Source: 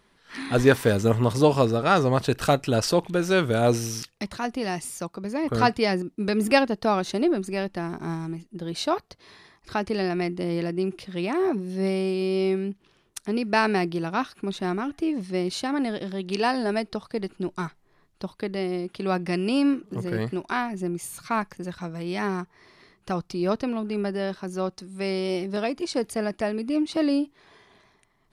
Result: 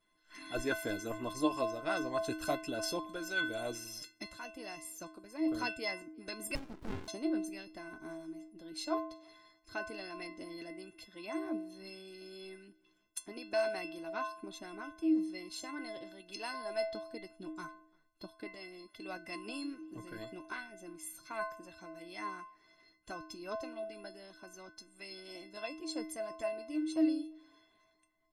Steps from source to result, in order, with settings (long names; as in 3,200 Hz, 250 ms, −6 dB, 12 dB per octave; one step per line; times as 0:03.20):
notch filter 1,200 Hz, Q 28
stiff-string resonator 310 Hz, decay 0.69 s, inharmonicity 0.03
harmonic and percussive parts rebalanced harmonic −11 dB
slap from a distant wall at 59 metres, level −29 dB
0:06.55–0:07.08: windowed peak hold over 65 samples
level +16 dB